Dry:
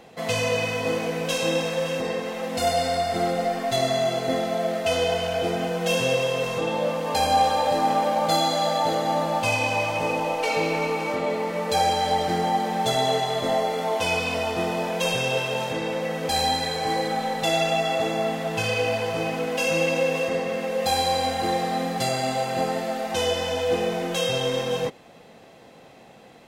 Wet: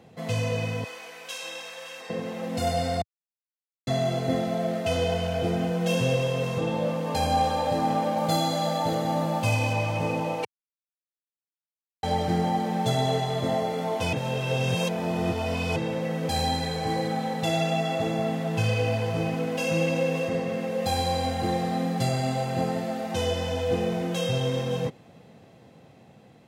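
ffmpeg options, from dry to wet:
-filter_complex "[0:a]asettb=1/sr,asplit=3[a][b][c];[a]atrim=end=0.844[d];[b]atrim=start=0.84:end=2.1,asetpts=PTS-STARTPTS,afade=t=in:d=0.004:c=qsin,afade=t=out:st=1.256:d=0.004:c=qsin,highpass=1.1k[e];[c]atrim=start=2.096[f];[d][e]acrossfade=d=0.004:c1=hsin:c2=qsin[g];[g][f]acrossfade=d=0.004:c1=qsin:c2=hsin,asettb=1/sr,asplit=3[h][i][j];[h]atrim=end=8.174[k];[i]atrim=start=8.17:end=9.73,asetpts=PTS-STARTPTS,afade=t=in:d=0.004:c=qsin,afade=t=out:st=1.556:d=0.004:c=qsin,highshelf=f=10k:g=7[l];[j]atrim=start=9.726[m];[k][l]acrossfade=d=0.004:c1=hsin:c2=qsin[n];[n][m]acrossfade=d=0.004:c1=qsin:c2=hsin,asplit=7[o][p][q][r][s][t][u];[o]atrim=end=3.02,asetpts=PTS-STARTPTS,afade=t=out:st=3.016:d=0.004:c=hsin[v];[p]atrim=start=3.02:end=3.87,asetpts=PTS-STARTPTS,volume=0[w];[q]atrim=start=3.87:end=10.45,asetpts=PTS-STARTPTS,afade=t=in:d=0.004:c=hsin,afade=t=out:st=6.576:d=0.004:c=hsin[x];[r]atrim=start=10.45:end=12.03,asetpts=PTS-STARTPTS,volume=0[y];[s]atrim=start=12.03:end=14.132,asetpts=PTS-STARTPTS,afade=t=in:d=0.004:c=hsin[z];[t]atrim=start=14.128:end=15.762,asetpts=PTS-STARTPTS,areverse[aa];[u]atrim=start=15.758[ab];[v][w][x][y][z]concat=n=5:v=0:a=1[ac];[ac][aa]acrossfade=d=0.004:c1=hsin:c2=hsin[ad];[ad][ab]acrossfade=d=0.004:c1=hsin:c2=hsin,equalizer=f=100:w=0.51:g=15,dynaudnorm=f=890:g=5:m=3.5dB,highpass=78,volume=-8.5dB"

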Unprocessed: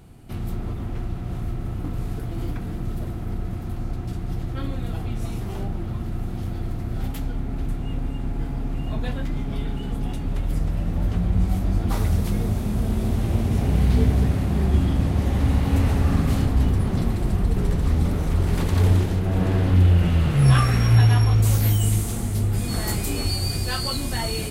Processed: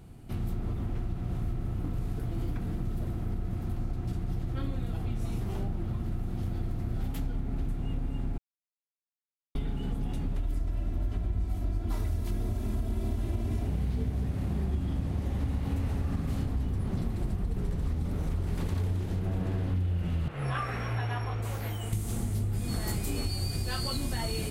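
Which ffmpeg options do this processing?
-filter_complex "[0:a]asettb=1/sr,asplit=3[a][b][c];[a]atrim=end=10.384[d];[b]atrim=start=10.38:end=13.67,asetpts=PTS-STARTPTS,afade=t=in:d=0.004:c=qsin,afade=t=out:st=3.286:d=0.004:c=qsin,aecho=1:1:3:0.65,atrim=end_sample=145089[e];[c]atrim=start=13.666[f];[d][e]acrossfade=d=0.004:c1=hsin:c2=qsin[g];[g][f]acrossfade=d=0.004:c1=qsin:c2=hsin,asettb=1/sr,asplit=3[h][i][j];[h]atrim=end=20.284[k];[i]atrim=start=20.28:end=21.93,asetpts=PTS-STARTPTS,afade=t=in:d=0.004:c=qsin,afade=t=out:st=1.646:d=0.004:c=qsin,acrossover=split=400 2800:gain=0.2 1 0.224[l][m][n];[l][m][n]amix=inputs=3:normalize=0[o];[j]atrim=start=21.926[p];[k][o]acrossfade=d=0.004:c1=hsin:c2=qsin[q];[q][p]acrossfade=d=0.004:c1=qsin:c2=hsin,asplit=3[r][s][t];[r]atrim=end=8.38,asetpts=PTS-STARTPTS,afade=t=out:st=8.376:d=0.004:c=hsin[u];[s]atrim=start=8.38:end=9.55,asetpts=PTS-STARTPTS,volume=0[v];[t]atrim=start=9.55,asetpts=PTS-STARTPTS,afade=t=in:d=0.004:c=hsin[w];[u][v][w]concat=n=3:v=0:a=1,lowshelf=f=380:g=3.5,acompressor=threshold=-22dB:ratio=6,volume=-5dB"

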